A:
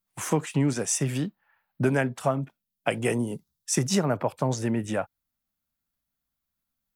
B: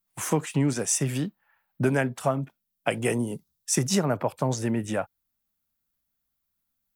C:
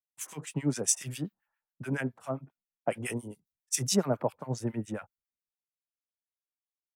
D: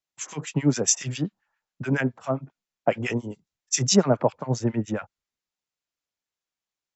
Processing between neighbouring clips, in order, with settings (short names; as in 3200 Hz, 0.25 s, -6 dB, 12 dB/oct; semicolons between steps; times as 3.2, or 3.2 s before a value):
high shelf 11000 Hz +6.5 dB
harmonic tremolo 7.3 Hz, depth 100%, crossover 1200 Hz; three-band expander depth 70%; gain -3.5 dB
brick-wall FIR low-pass 7700 Hz; gain +8 dB